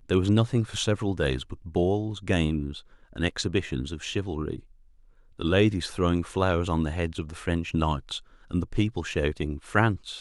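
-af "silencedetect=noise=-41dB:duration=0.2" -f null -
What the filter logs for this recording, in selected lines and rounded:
silence_start: 2.80
silence_end: 3.13 | silence_duration: 0.33
silence_start: 4.59
silence_end: 5.39 | silence_duration: 0.80
silence_start: 8.19
silence_end: 8.51 | silence_duration: 0.32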